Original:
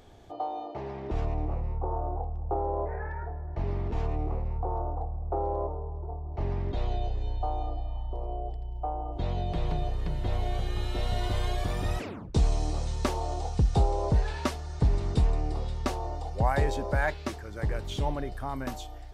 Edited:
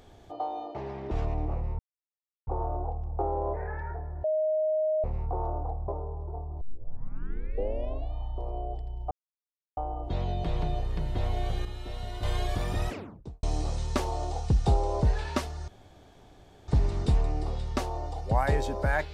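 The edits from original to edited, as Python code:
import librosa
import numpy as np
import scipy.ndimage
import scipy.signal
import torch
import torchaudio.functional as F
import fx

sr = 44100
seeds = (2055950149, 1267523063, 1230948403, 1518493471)

y = fx.studio_fade_out(x, sr, start_s=11.94, length_s=0.58)
y = fx.edit(y, sr, fx.insert_silence(at_s=1.79, length_s=0.68),
    fx.bleep(start_s=3.56, length_s=0.8, hz=623.0, db=-23.5),
    fx.cut(start_s=5.2, length_s=0.43),
    fx.tape_start(start_s=6.36, length_s=1.52),
    fx.insert_silence(at_s=8.86, length_s=0.66),
    fx.clip_gain(start_s=10.74, length_s=0.58, db=-7.5),
    fx.insert_room_tone(at_s=14.77, length_s=1.0), tone=tone)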